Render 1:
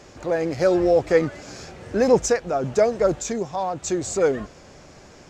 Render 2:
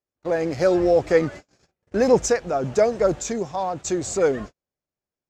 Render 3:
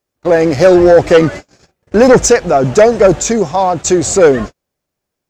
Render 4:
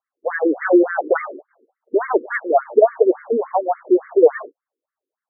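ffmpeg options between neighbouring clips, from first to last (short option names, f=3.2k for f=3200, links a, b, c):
-af "agate=range=-46dB:threshold=-34dB:ratio=16:detection=peak"
-af "aeval=exprs='0.562*sin(PI/2*2*val(0)/0.562)':c=same,volume=4dB"
-af "afftfilt=real='re*between(b*sr/1024,340*pow(1600/340,0.5+0.5*sin(2*PI*3.5*pts/sr))/1.41,340*pow(1600/340,0.5+0.5*sin(2*PI*3.5*pts/sr))*1.41)':imag='im*between(b*sr/1024,340*pow(1600/340,0.5+0.5*sin(2*PI*3.5*pts/sr))/1.41,340*pow(1600/340,0.5+0.5*sin(2*PI*3.5*pts/sr))*1.41)':win_size=1024:overlap=0.75,volume=-2.5dB"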